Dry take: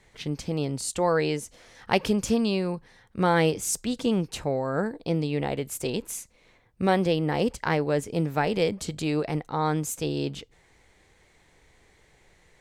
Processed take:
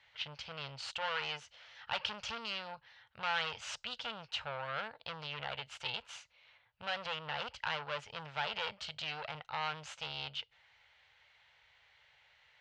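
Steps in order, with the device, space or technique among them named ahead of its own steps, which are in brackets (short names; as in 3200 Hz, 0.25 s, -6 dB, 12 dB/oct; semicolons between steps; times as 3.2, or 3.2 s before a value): scooped metal amplifier (tube stage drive 27 dB, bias 0.65; speaker cabinet 110–4400 Hz, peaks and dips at 180 Hz -8 dB, 360 Hz -6 dB, 590 Hz +6 dB, 870 Hz +6 dB, 1400 Hz +7 dB, 2900 Hz +8 dB; passive tone stack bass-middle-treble 10-0-10); gain +2.5 dB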